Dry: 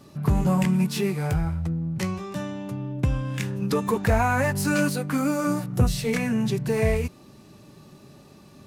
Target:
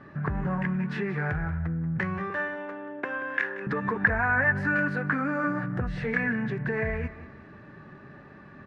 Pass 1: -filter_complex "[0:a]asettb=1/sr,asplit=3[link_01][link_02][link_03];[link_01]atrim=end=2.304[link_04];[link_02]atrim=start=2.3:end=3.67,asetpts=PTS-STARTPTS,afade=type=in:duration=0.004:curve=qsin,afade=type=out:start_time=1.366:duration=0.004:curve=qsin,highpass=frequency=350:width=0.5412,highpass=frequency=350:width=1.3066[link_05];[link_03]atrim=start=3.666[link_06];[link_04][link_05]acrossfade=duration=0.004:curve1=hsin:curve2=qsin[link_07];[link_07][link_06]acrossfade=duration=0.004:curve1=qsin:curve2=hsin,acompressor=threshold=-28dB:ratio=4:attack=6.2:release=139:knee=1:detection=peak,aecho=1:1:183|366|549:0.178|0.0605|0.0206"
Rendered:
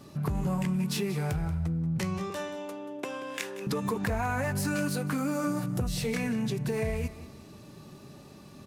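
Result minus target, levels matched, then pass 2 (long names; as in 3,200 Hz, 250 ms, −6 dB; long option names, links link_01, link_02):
2,000 Hz band −9.0 dB
-filter_complex "[0:a]asettb=1/sr,asplit=3[link_01][link_02][link_03];[link_01]atrim=end=2.304[link_04];[link_02]atrim=start=2.3:end=3.67,asetpts=PTS-STARTPTS,afade=type=in:duration=0.004:curve=qsin,afade=type=out:start_time=1.366:duration=0.004:curve=qsin,highpass=frequency=350:width=0.5412,highpass=frequency=350:width=1.3066[link_05];[link_03]atrim=start=3.666[link_06];[link_04][link_05]acrossfade=duration=0.004:curve1=hsin:curve2=qsin[link_07];[link_07][link_06]acrossfade=duration=0.004:curve1=qsin:curve2=hsin,acompressor=threshold=-28dB:ratio=4:attack=6.2:release=139:knee=1:detection=peak,lowpass=frequency=1700:width_type=q:width=6.7,aecho=1:1:183|366|549:0.178|0.0605|0.0206"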